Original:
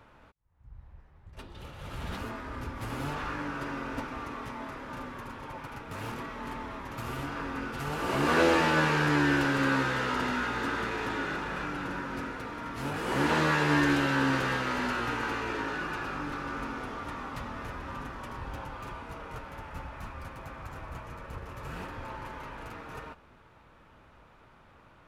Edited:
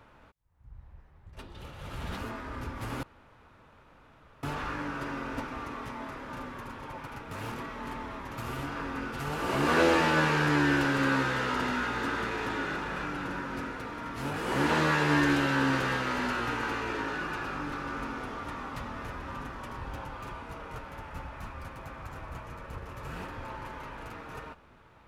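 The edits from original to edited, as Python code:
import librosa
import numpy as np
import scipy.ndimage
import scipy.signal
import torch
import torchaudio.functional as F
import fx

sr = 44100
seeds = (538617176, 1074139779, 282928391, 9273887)

y = fx.edit(x, sr, fx.insert_room_tone(at_s=3.03, length_s=1.4), tone=tone)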